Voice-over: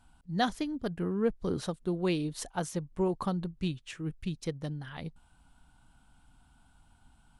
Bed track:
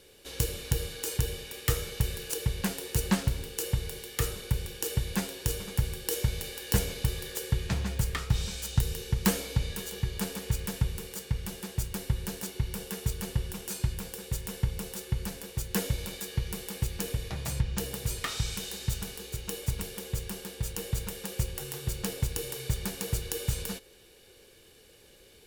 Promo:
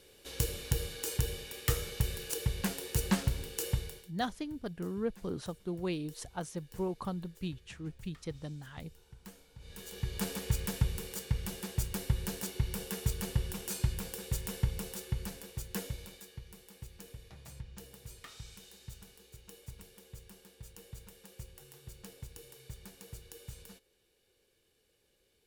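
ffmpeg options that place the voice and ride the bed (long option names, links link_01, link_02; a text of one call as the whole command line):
ffmpeg -i stem1.wav -i stem2.wav -filter_complex "[0:a]adelay=3800,volume=-5.5dB[link_01];[1:a]volume=21.5dB,afade=type=out:start_time=3.74:duration=0.38:silence=0.0707946,afade=type=in:start_time=9.58:duration=0.72:silence=0.0595662,afade=type=out:start_time=14.51:duration=1.9:silence=0.16788[link_02];[link_01][link_02]amix=inputs=2:normalize=0" out.wav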